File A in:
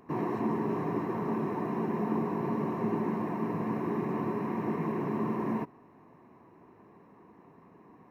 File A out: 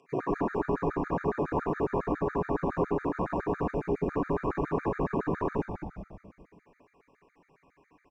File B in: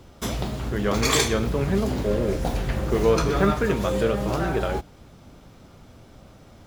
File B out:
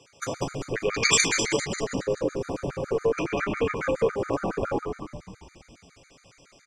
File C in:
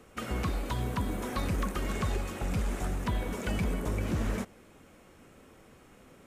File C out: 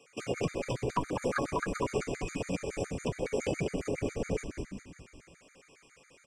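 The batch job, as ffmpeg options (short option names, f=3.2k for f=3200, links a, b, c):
-filter_complex "[0:a]afwtdn=0.0282,equalizer=f=880:w=5.7:g=2.5,aecho=1:1:7.2:0.36,acompressor=threshold=-32dB:ratio=12,crystalizer=i=9.5:c=0,highpass=f=110:w=0.5412,highpass=f=110:w=1.3066,equalizer=f=120:t=q:w=4:g=-3,equalizer=f=220:t=q:w=4:g=-7,equalizer=f=490:t=q:w=4:g=8,equalizer=f=880:t=q:w=4:g=-4,equalizer=f=2.4k:t=q:w=4:g=7,equalizer=f=3.9k:t=q:w=4:g=-9,lowpass=f=7.1k:w=0.5412,lowpass=f=7.1k:w=1.3066,asplit=2[a][b];[b]asplit=7[c][d][e][f][g][h][i];[c]adelay=195,afreqshift=-120,volume=-5dB[j];[d]adelay=390,afreqshift=-240,volume=-10.5dB[k];[e]adelay=585,afreqshift=-360,volume=-16dB[l];[f]adelay=780,afreqshift=-480,volume=-21.5dB[m];[g]adelay=975,afreqshift=-600,volume=-27.1dB[n];[h]adelay=1170,afreqshift=-720,volume=-32.6dB[o];[i]adelay=1365,afreqshift=-840,volume=-38.1dB[p];[j][k][l][m][n][o][p]amix=inputs=7:normalize=0[q];[a][q]amix=inputs=2:normalize=0,afftfilt=real='re*gt(sin(2*PI*7.2*pts/sr)*(1-2*mod(floor(b*sr/1024/1200),2)),0)':imag='im*gt(sin(2*PI*7.2*pts/sr)*(1-2*mod(floor(b*sr/1024/1200),2)),0)':win_size=1024:overlap=0.75,volume=6.5dB"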